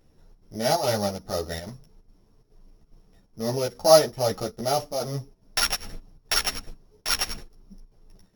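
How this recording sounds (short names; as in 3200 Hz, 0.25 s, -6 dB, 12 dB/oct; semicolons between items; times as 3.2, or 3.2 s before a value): a buzz of ramps at a fixed pitch in blocks of 8 samples; chopped level 2.4 Hz, depth 60%, duty 80%; a shimmering, thickened sound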